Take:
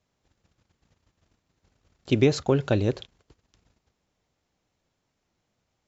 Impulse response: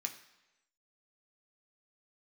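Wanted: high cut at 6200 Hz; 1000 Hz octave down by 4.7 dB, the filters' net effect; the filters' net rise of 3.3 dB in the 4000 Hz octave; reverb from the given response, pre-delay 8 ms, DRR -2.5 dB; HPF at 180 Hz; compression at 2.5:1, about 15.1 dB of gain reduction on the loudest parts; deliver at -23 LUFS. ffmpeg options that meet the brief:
-filter_complex "[0:a]highpass=180,lowpass=6.2k,equalizer=f=1k:t=o:g=-7,equalizer=f=4k:t=o:g=5,acompressor=threshold=-39dB:ratio=2.5,asplit=2[a][b];[1:a]atrim=start_sample=2205,adelay=8[c];[b][c]afir=irnorm=-1:irlink=0,volume=3dB[d];[a][d]amix=inputs=2:normalize=0,volume=13.5dB"

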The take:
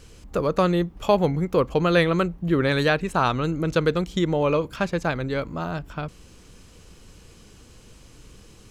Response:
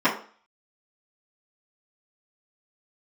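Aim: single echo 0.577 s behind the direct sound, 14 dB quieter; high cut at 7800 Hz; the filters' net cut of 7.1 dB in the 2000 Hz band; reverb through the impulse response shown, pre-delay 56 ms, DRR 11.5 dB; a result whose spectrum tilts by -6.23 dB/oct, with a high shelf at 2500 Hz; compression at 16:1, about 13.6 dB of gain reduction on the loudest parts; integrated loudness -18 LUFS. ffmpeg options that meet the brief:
-filter_complex "[0:a]lowpass=7.8k,equalizer=f=2k:t=o:g=-6,highshelf=f=2.5k:g=-8,acompressor=threshold=-29dB:ratio=16,aecho=1:1:577:0.2,asplit=2[a][b];[1:a]atrim=start_sample=2205,adelay=56[c];[b][c]afir=irnorm=-1:irlink=0,volume=-30dB[d];[a][d]amix=inputs=2:normalize=0,volume=16dB"

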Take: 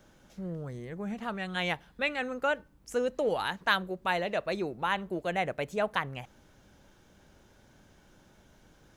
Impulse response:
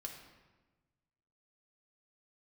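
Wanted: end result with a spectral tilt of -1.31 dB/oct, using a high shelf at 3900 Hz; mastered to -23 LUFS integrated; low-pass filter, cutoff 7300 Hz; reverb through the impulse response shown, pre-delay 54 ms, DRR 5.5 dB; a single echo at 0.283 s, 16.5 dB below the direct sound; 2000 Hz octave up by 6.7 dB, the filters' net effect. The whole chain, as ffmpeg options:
-filter_complex "[0:a]lowpass=7.3k,equalizer=f=2k:t=o:g=6.5,highshelf=f=3.9k:g=9,aecho=1:1:283:0.15,asplit=2[a][b];[1:a]atrim=start_sample=2205,adelay=54[c];[b][c]afir=irnorm=-1:irlink=0,volume=-2.5dB[d];[a][d]amix=inputs=2:normalize=0,volume=4dB"

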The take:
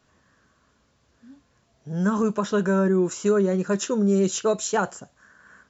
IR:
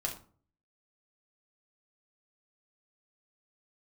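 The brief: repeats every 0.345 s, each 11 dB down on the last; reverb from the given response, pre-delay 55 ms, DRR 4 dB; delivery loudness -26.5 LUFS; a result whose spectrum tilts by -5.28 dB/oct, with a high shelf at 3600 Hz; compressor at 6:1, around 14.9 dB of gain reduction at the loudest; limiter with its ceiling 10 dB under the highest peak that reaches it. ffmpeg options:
-filter_complex "[0:a]highshelf=f=3.6k:g=-6.5,acompressor=threshold=-34dB:ratio=6,alimiter=level_in=10dB:limit=-24dB:level=0:latency=1,volume=-10dB,aecho=1:1:345|690|1035:0.282|0.0789|0.0221,asplit=2[a][b];[1:a]atrim=start_sample=2205,adelay=55[c];[b][c]afir=irnorm=-1:irlink=0,volume=-6.5dB[d];[a][d]amix=inputs=2:normalize=0,volume=14.5dB"

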